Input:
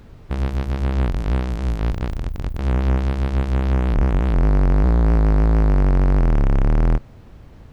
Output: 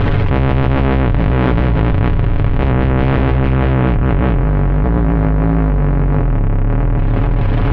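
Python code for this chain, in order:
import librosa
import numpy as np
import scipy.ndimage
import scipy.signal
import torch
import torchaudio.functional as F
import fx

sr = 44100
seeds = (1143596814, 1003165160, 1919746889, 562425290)

p1 = x + 0.5 * 10.0 ** (-32.0 / 20.0) * np.sign(x)
p2 = scipy.signal.sosfilt(scipy.signal.butter(4, 3000.0, 'lowpass', fs=sr, output='sos'), p1)
p3 = fx.peak_eq(p2, sr, hz=95.0, db=11.0, octaves=0.24)
p4 = p3 + 0.62 * np.pad(p3, (int(7.1 * sr / 1000.0), 0))[:len(p3)]
p5 = p4 + fx.echo_feedback(p4, sr, ms=436, feedback_pct=45, wet_db=-8.0, dry=0)
p6 = fx.env_flatten(p5, sr, amount_pct=100)
y = p6 * 10.0 ** (-3.0 / 20.0)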